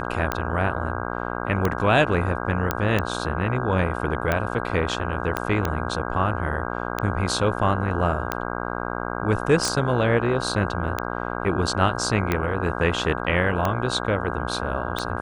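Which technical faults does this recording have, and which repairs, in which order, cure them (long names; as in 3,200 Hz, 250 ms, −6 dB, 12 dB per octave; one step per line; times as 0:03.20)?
mains buzz 60 Hz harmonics 27 −29 dBFS
scratch tick 45 rpm −9 dBFS
0:02.71: click −7 dBFS
0:05.37: click −10 dBFS
0:09.68: click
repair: click removal
hum removal 60 Hz, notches 27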